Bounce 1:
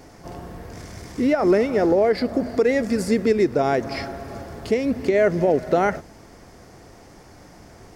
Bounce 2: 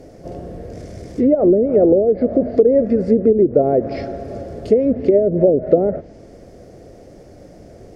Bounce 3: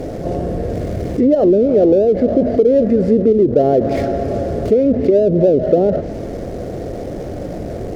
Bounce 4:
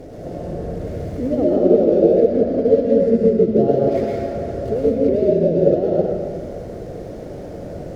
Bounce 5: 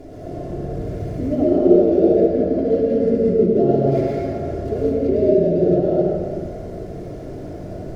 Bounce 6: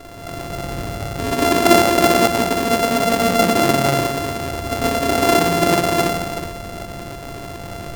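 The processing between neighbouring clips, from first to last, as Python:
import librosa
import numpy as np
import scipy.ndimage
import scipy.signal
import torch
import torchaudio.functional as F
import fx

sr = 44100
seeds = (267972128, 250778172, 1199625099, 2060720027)

y1 = fx.env_lowpass_down(x, sr, base_hz=380.0, full_db=-13.5)
y1 = fx.low_shelf_res(y1, sr, hz=740.0, db=8.0, q=3.0)
y1 = y1 * librosa.db_to_amplitude(-4.0)
y2 = scipy.signal.medfilt(y1, 15)
y2 = fx.env_flatten(y2, sr, amount_pct=50)
y2 = y2 * librosa.db_to_amplitude(-1.0)
y3 = fx.rev_plate(y2, sr, seeds[0], rt60_s=1.8, hf_ratio=0.75, predelay_ms=90, drr_db=-4.5)
y3 = fx.upward_expand(y3, sr, threshold_db=-11.0, expansion=1.5)
y3 = y3 * librosa.db_to_amplitude(-7.0)
y4 = fx.room_shoebox(y3, sr, seeds[1], volume_m3=2600.0, walls='furnished', distance_m=3.1)
y4 = y4 * librosa.db_to_amplitude(-4.0)
y5 = np.r_[np.sort(y4[:len(y4) // 64 * 64].reshape(-1, 64), axis=1).ravel(), y4[len(y4) // 64 * 64:]]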